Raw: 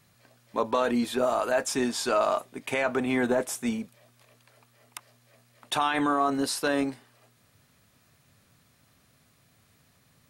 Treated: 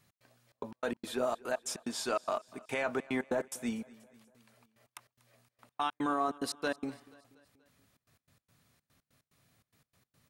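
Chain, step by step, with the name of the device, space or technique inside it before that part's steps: trance gate with a delay (trance gate "x.xxx.x." 145 bpm -60 dB; feedback delay 240 ms, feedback 54%, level -22 dB); trim -6.5 dB

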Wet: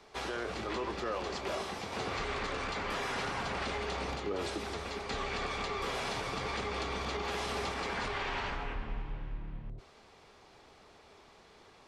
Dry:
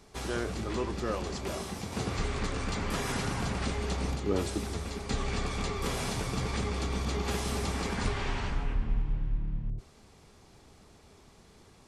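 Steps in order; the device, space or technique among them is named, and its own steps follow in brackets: DJ mixer with the lows and highs turned down (three-band isolator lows -13 dB, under 380 Hz, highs -14 dB, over 4.9 kHz; peak limiter -30 dBFS, peak gain reduction 7.5 dB); trim +3.5 dB

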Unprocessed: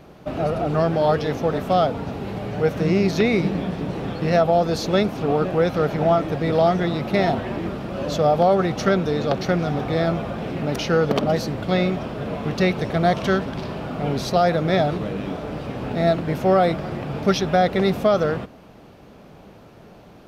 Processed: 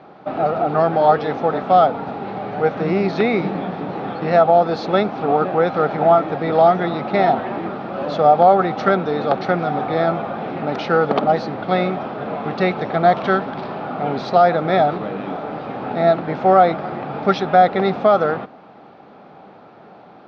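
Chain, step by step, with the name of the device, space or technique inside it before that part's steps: kitchen radio (cabinet simulation 190–4000 Hz, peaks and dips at 790 Hz +9 dB, 1.3 kHz +6 dB, 2.9 kHz -5 dB); trim +1.5 dB

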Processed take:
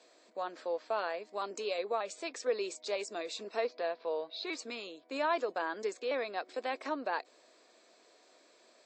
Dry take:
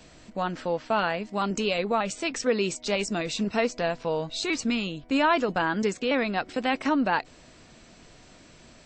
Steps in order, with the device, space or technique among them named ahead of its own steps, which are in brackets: phone speaker on a table (cabinet simulation 390–7500 Hz, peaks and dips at 850 Hz -5 dB, 1.4 kHz -6 dB, 2 kHz -5 dB, 2.9 kHz -10 dB, 5.8 kHz -7 dB); 3.64–4.47 s: steep low-pass 4.7 kHz 36 dB/octave; trim -5.5 dB

